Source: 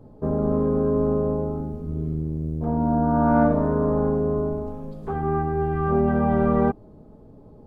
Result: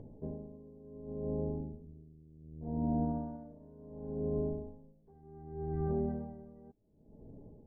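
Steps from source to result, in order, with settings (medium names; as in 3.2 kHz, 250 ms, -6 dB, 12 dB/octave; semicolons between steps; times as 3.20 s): upward compressor, threshold -35 dBFS; peak limiter -14 dBFS, peak gain reduction 6.5 dB; boxcar filter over 34 samples; logarithmic tremolo 0.68 Hz, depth 23 dB; trim -8 dB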